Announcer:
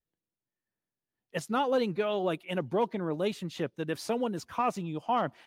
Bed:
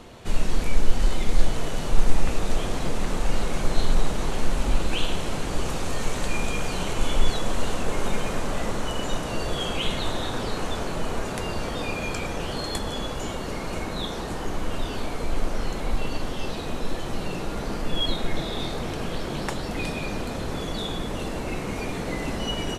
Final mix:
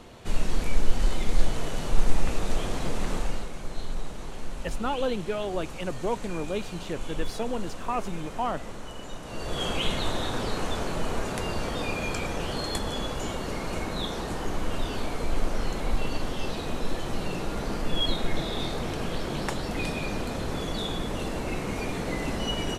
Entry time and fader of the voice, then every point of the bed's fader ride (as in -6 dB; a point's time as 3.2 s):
3.30 s, -1.0 dB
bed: 3.17 s -2.5 dB
3.53 s -11.5 dB
9.19 s -11.5 dB
9.64 s -1 dB